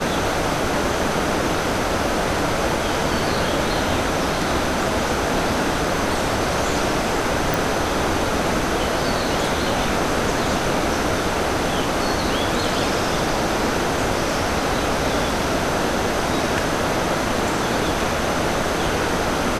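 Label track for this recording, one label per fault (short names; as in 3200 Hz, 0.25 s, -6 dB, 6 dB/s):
7.540000	7.540000	pop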